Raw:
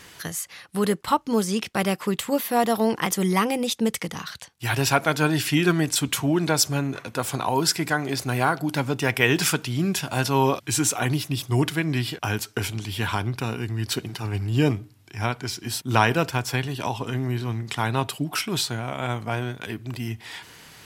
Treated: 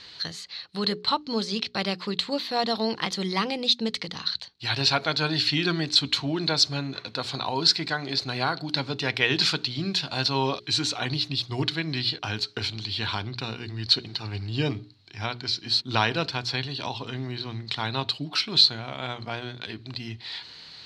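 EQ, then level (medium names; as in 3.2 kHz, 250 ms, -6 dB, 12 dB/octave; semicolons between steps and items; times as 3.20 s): resonant low-pass 4.2 kHz, resonance Q 11; hum notches 60/120/180/240/300/360/420 Hz; -5.5 dB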